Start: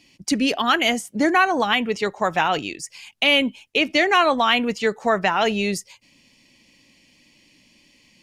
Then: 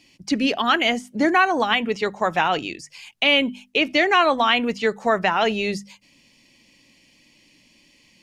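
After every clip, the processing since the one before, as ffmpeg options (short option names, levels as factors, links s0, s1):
-filter_complex "[0:a]acrossover=split=5500[s0][s1];[s1]acompressor=threshold=0.00398:ratio=4:attack=1:release=60[s2];[s0][s2]amix=inputs=2:normalize=0,bandreject=f=50:t=h:w=6,bandreject=f=100:t=h:w=6,bandreject=f=150:t=h:w=6,bandreject=f=200:t=h:w=6,bandreject=f=250:t=h:w=6"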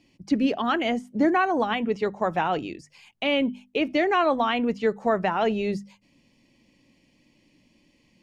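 -af "tiltshelf=f=1300:g=6.5,volume=0.473"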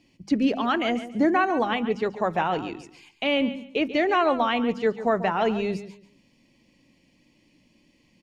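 -af "aecho=1:1:140|280|420:0.224|0.0537|0.0129"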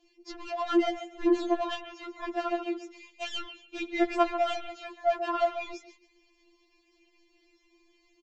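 -af "aresample=16000,asoftclip=type=tanh:threshold=0.0891,aresample=44100,afftfilt=real='re*4*eq(mod(b,16),0)':imag='im*4*eq(mod(b,16),0)':win_size=2048:overlap=0.75"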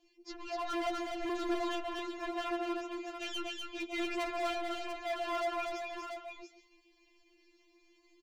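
-filter_complex "[0:a]asoftclip=type=hard:threshold=0.0299,asplit=2[s0][s1];[s1]aecho=0:1:246|692:0.708|0.473[s2];[s0][s2]amix=inputs=2:normalize=0,volume=0.668"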